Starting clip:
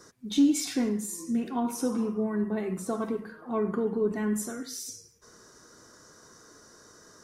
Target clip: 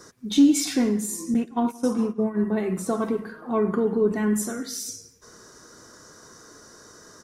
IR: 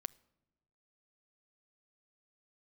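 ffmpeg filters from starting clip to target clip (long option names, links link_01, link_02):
-filter_complex "[0:a]asettb=1/sr,asplit=3[link_01][link_02][link_03];[link_01]atrim=end=1.344[link_04];[link_02]atrim=start=1.34:end=2.44,asetpts=PTS-STARTPTS,afade=type=in:duration=0.004:curve=qsin,afade=type=out:start_time=1.096:duration=0.004:curve=qsin,agate=range=-18dB:threshold=-29dB:ratio=16:detection=peak[link_05];[link_03]atrim=start=2.436[link_06];[link_04][link_05]acrossfade=duration=0.004:curve1=hsin:curve2=qsin[link_07];[link_07][link_06]acrossfade=duration=0.004:curve1=qsin:curve2=hsin,asplit=2[link_08][link_09];[link_09]adelay=171,lowpass=frequency=4900:poles=1,volume=-23dB,asplit=2[link_10][link_11];[link_11]adelay=171,lowpass=frequency=4900:poles=1,volume=0.42,asplit=2[link_12][link_13];[link_13]adelay=171,lowpass=frequency=4900:poles=1,volume=0.42[link_14];[link_10][link_12][link_14]amix=inputs=3:normalize=0[link_15];[link_08][link_15]amix=inputs=2:normalize=0,volume=5.5dB"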